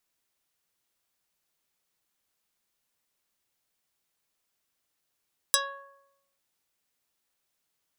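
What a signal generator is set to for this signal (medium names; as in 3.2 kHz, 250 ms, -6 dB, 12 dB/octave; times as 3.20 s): plucked string C#5, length 0.85 s, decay 0.91 s, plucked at 0.25, dark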